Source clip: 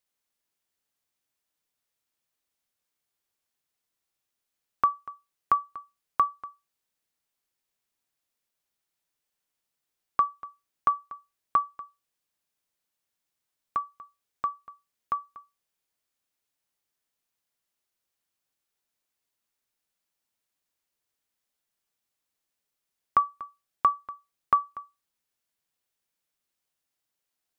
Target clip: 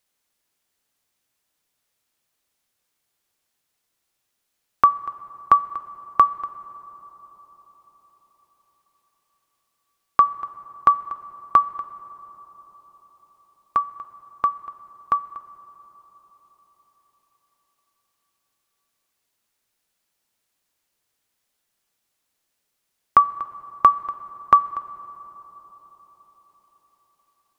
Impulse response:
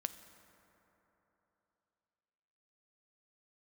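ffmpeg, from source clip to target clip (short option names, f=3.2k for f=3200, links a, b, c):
-filter_complex "[0:a]asplit=2[a][b];[1:a]atrim=start_sample=2205,asetrate=27342,aresample=44100[c];[b][c]afir=irnorm=-1:irlink=0,volume=-3.5dB[d];[a][d]amix=inputs=2:normalize=0,volume=3.5dB"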